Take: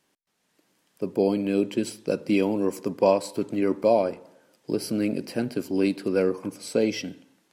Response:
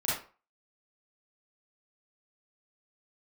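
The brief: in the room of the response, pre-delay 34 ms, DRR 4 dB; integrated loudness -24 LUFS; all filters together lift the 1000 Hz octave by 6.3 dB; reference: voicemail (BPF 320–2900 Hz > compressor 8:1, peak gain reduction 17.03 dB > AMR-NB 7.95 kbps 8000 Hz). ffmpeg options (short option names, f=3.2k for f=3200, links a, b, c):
-filter_complex "[0:a]equalizer=f=1k:t=o:g=8.5,asplit=2[a][b];[1:a]atrim=start_sample=2205,adelay=34[c];[b][c]afir=irnorm=-1:irlink=0,volume=-12dB[d];[a][d]amix=inputs=2:normalize=0,highpass=320,lowpass=2.9k,acompressor=threshold=-29dB:ratio=8,volume=11dB" -ar 8000 -c:a libopencore_amrnb -b:a 7950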